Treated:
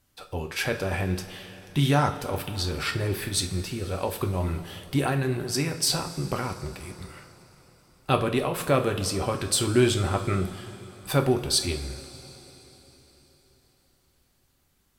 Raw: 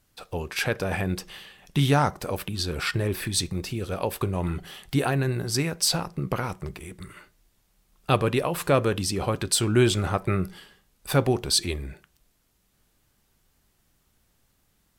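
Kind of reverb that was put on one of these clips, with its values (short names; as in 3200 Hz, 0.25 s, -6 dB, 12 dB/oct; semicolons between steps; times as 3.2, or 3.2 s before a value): two-slope reverb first 0.35 s, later 4.2 s, from -17 dB, DRR 4.5 dB; gain -2 dB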